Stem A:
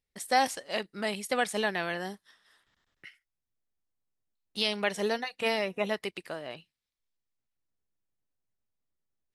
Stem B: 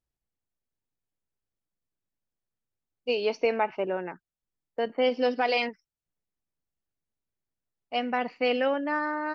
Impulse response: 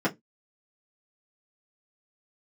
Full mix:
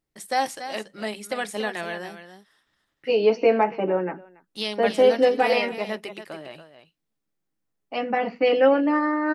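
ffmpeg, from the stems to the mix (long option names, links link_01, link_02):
-filter_complex "[0:a]volume=-1dB,asplit=3[link_01][link_02][link_03];[link_02]volume=-21.5dB[link_04];[link_03]volume=-9.5dB[link_05];[1:a]volume=-1dB,asplit=3[link_06][link_07][link_08];[link_07]volume=-9dB[link_09];[link_08]volume=-16.5dB[link_10];[2:a]atrim=start_sample=2205[link_11];[link_04][link_09]amix=inputs=2:normalize=0[link_12];[link_12][link_11]afir=irnorm=-1:irlink=0[link_13];[link_05][link_10]amix=inputs=2:normalize=0,aecho=0:1:283:1[link_14];[link_01][link_06][link_13][link_14]amix=inputs=4:normalize=0"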